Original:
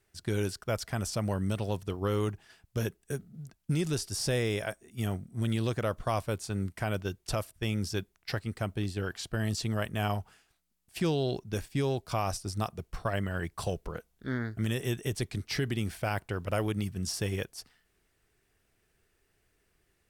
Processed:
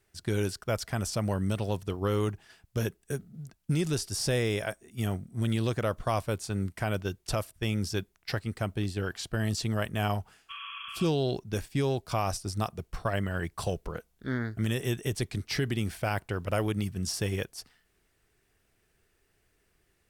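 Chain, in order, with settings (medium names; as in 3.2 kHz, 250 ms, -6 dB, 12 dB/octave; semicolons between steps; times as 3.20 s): spectral replace 10.52–11.04 s, 1–3.4 kHz after; trim +1.5 dB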